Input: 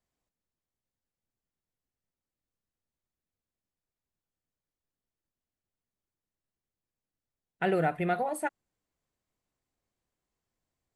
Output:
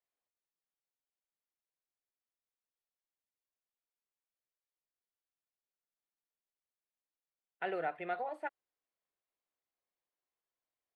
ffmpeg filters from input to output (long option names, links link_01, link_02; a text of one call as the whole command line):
ffmpeg -i in.wav -filter_complex "[0:a]acrossover=split=4400[link_01][link_02];[link_02]acompressor=threshold=-51dB:ratio=4:attack=1:release=60[link_03];[link_01][link_03]amix=inputs=2:normalize=0,acrossover=split=360 4600:gain=0.112 1 0.126[link_04][link_05][link_06];[link_04][link_05][link_06]amix=inputs=3:normalize=0,volume=-7dB" out.wav